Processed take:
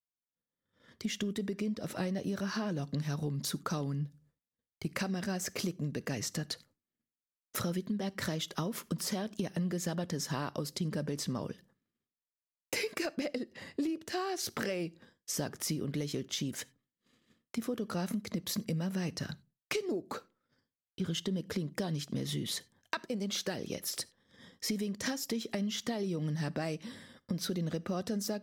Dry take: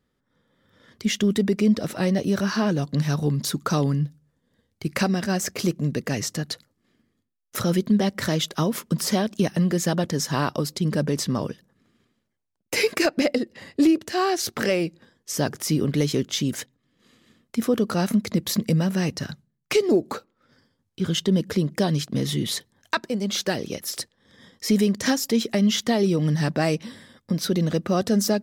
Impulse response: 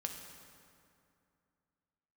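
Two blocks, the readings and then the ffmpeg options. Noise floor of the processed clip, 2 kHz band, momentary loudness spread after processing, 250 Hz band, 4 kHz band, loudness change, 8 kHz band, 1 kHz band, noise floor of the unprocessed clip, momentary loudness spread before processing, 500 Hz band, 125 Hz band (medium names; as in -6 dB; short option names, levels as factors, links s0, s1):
under -85 dBFS, -11.0 dB, 6 LU, -13.0 dB, -10.0 dB, -12.5 dB, -9.5 dB, -12.5 dB, -75 dBFS, 10 LU, -13.5 dB, -12.0 dB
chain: -filter_complex "[0:a]agate=range=0.0224:threshold=0.00282:ratio=3:detection=peak,acompressor=threshold=0.0447:ratio=6,asplit=2[s0][s1];[1:a]atrim=start_sample=2205,atrim=end_sample=4410[s2];[s1][s2]afir=irnorm=-1:irlink=0,volume=0.266[s3];[s0][s3]amix=inputs=2:normalize=0,volume=0.473"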